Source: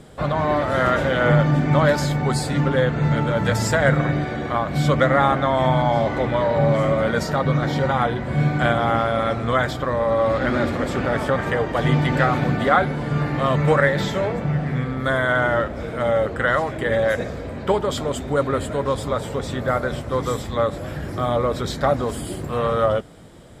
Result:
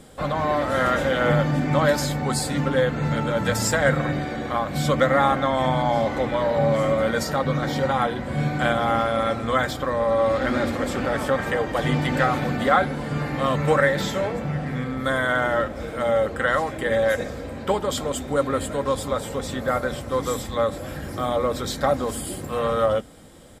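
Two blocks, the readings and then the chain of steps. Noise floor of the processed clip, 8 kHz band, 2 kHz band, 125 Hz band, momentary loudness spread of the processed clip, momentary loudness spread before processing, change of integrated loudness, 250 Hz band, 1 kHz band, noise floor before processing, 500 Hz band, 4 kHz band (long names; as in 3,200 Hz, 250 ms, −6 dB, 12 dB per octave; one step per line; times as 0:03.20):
−34 dBFS, +3.5 dB, −2.0 dB, −5.5 dB, 7 LU, 7 LU, −2.0 dB, −2.5 dB, −1.5 dB, −31 dBFS, −1.5 dB, 0.0 dB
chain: high-shelf EQ 6,500 Hz +9.5 dB
mains-hum notches 60/120/180/240/300 Hz
comb filter 3.8 ms, depth 30%
level −2.5 dB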